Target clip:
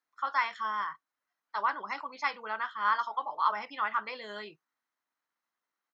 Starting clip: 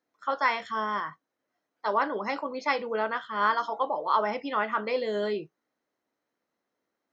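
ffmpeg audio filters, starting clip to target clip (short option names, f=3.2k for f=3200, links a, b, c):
-af "lowshelf=f=740:t=q:w=1.5:g=-10.5,atempo=1.2,volume=-4dB"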